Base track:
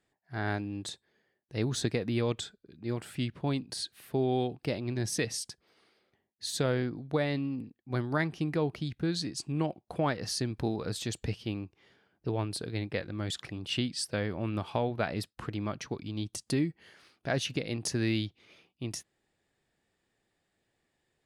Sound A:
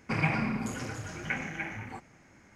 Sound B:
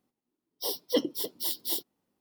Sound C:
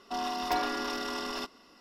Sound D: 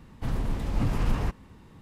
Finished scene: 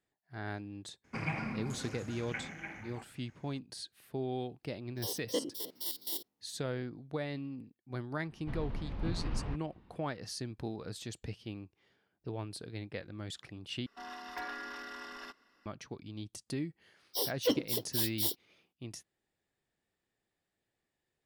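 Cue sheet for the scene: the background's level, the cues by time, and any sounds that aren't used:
base track −8 dB
0:01.04: mix in A −8 dB
0:04.40: mix in B −5 dB + spectrum averaged block by block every 50 ms
0:08.25: mix in D −10.5 dB, fades 0.10 s + low-pass filter 4,200 Hz 24 dB per octave
0:13.86: overwrite with C −15 dB + parametric band 1,700 Hz +13.5 dB 0.73 octaves
0:16.53: mix in B −5 dB + leveller curve on the samples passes 1

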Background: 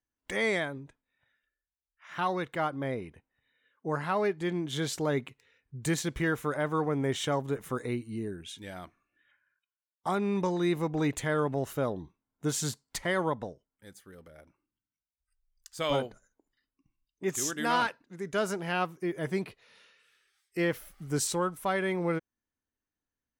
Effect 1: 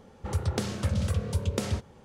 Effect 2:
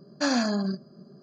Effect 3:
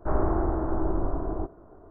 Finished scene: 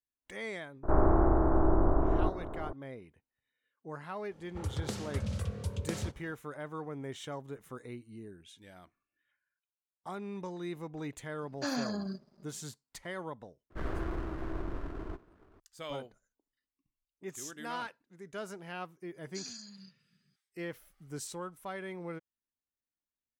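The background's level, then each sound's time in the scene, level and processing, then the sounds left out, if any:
background −11.5 dB
0:00.83: mix in 3 −1.5 dB + compressor on every frequency bin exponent 0.6
0:04.31: mix in 1 −7.5 dB
0:11.41: mix in 2 −9.5 dB + dead-zone distortion −57 dBFS
0:13.70: mix in 3 −9.5 dB + lower of the sound and its delayed copy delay 0.6 ms
0:19.14: mix in 2 −15.5 dB + drawn EQ curve 120 Hz 0 dB, 560 Hz −30 dB, 1,500 Hz −14 dB, 6,700 Hz +9 dB

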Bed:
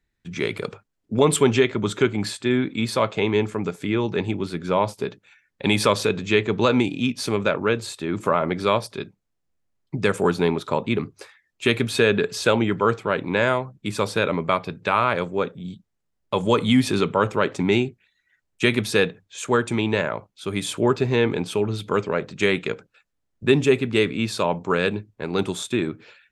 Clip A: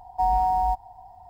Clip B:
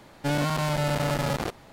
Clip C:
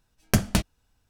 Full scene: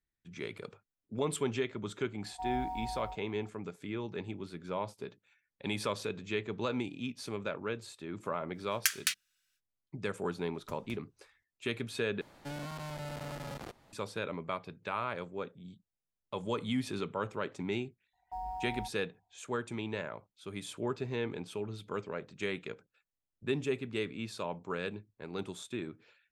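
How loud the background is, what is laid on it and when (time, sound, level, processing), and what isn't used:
bed −15.5 dB
0:02.20: mix in A −18 dB + loudspeakers that aren't time-aligned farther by 19 metres −1 dB, 70 metres −2 dB
0:08.52: mix in C −0.5 dB, fades 0.05 s + Butterworth high-pass 1,500 Hz
0:10.35: mix in C −16.5 dB + downward compressor 1.5 to 1, threshold −57 dBFS
0:12.21: overwrite with B −15.5 dB + multiband upward and downward compressor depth 40%
0:18.13: mix in A −18 dB + noise gate −41 dBFS, range −14 dB

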